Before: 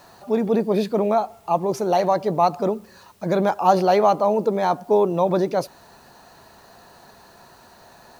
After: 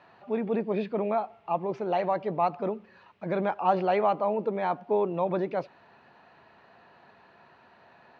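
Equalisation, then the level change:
high-pass filter 100 Hz
transistor ladder low-pass 3,100 Hz, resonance 40%
0.0 dB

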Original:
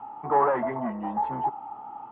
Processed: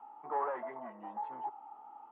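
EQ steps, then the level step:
first difference
dynamic equaliser 230 Hz, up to −4 dB, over −59 dBFS, Q 0.99
resonant band-pass 320 Hz, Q 0.71
+12.0 dB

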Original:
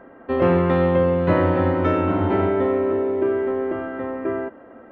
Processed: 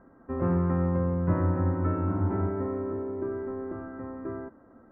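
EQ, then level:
low-pass filter 1,300 Hz 24 dB per octave
parametric band 580 Hz −15 dB 2.4 octaves
0.0 dB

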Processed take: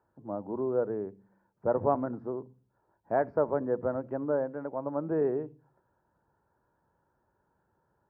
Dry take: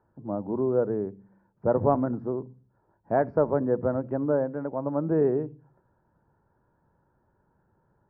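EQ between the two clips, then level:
high-pass filter 51 Hz
parametric band 140 Hz −7 dB 2.5 octaves
−2.0 dB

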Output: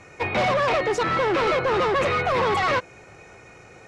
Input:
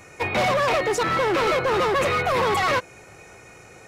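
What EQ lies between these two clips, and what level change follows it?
high-frequency loss of the air 76 metres
0.0 dB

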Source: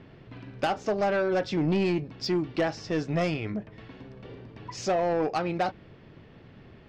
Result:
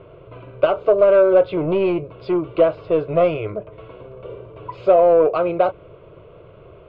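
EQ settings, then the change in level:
high-frequency loss of the air 310 metres
parametric band 670 Hz +11.5 dB 1.7 octaves
phaser with its sweep stopped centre 1,200 Hz, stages 8
+6.5 dB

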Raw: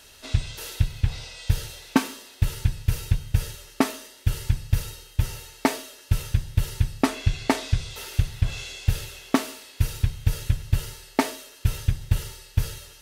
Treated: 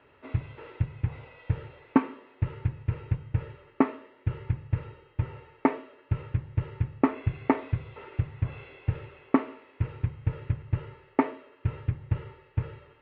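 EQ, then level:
high-frequency loss of the air 300 metres
loudspeaker in its box 130–2,100 Hz, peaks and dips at 200 Hz −9 dB, 690 Hz −7 dB, 1,600 Hz −8 dB
+2.0 dB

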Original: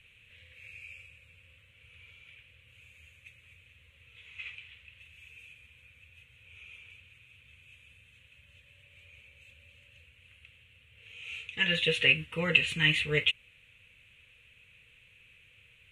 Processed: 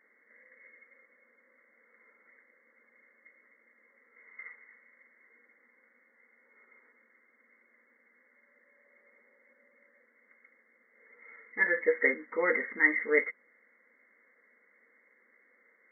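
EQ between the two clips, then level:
linear-phase brick-wall band-pass 210–2,200 Hz
+5.0 dB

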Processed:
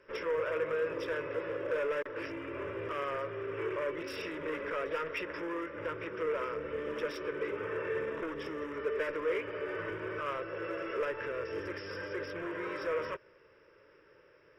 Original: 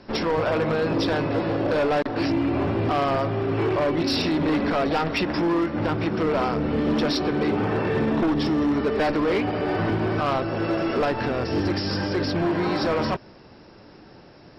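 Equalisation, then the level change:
low shelf with overshoot 340 Hz −12.5 dB, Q 3
notch filter 770 Hz, Q 17
phaser with its sweep stopped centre 1,800 Hz, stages 4
−8.0 dB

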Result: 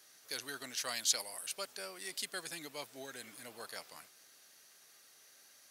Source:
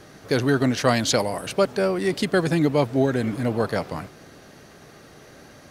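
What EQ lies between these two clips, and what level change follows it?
first difference
−4.0 dB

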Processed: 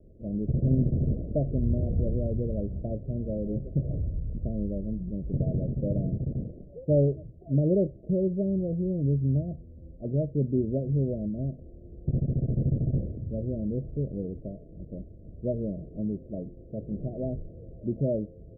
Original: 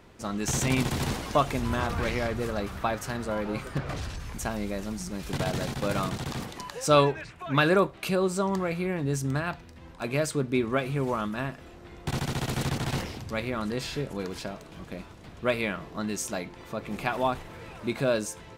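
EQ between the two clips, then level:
Butterworth low-pass 640 Hz 96 dB per octave
low-shelf EQ 90 Hz +12 dB
dynamic equaliser 140 Hz, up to +5 dB, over −38 dBFS, Q 0.75
−3.5 dB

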